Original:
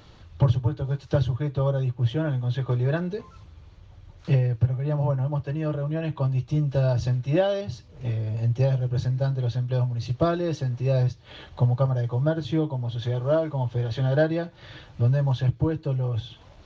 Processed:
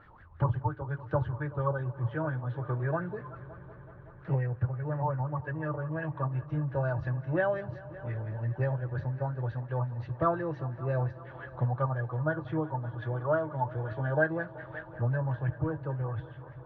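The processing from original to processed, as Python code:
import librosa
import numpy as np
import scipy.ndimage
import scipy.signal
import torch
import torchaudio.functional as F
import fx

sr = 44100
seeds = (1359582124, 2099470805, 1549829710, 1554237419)

y = fx.filter_lfo_lowpass(x, sr, shape='sine', hz=5.7, low_hz=880.0, high_hz=1800.0, q=7.4)
y = fx.echo_heads(y, sr, ms=189, heads='all three', feedback_pct=67, wet_db=-22.5)
y = y * librosa.db_to_amplitude(-8.5)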